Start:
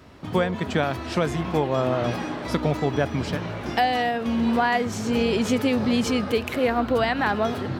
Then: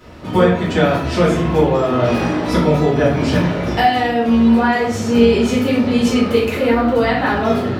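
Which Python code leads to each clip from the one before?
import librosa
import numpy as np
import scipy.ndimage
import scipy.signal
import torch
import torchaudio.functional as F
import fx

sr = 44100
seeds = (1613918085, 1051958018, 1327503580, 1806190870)

y = fx.rider(x, sr, range_db=10, speed_s=0.5)
y = fx.room_shoebox(y, sr, seeds[0], volume_m3=89.0, walls='mixed', distance_m=1.9)
y = y * 10.0 ** (-1.5 / 20.0)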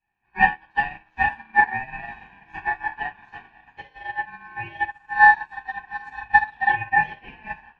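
y = fx.double_bandpass(x, sr, hz=750.0, octaves=1.2)
y = y * np.sin(2.0 * np.pi * 1300.0 * np.arange(len(y)) / sr)
y = fx.upward_expand(y, sr, threshold_db=-40.0, expansion=2.5)
y = y * 10.0 ** (8.0 / 20.0)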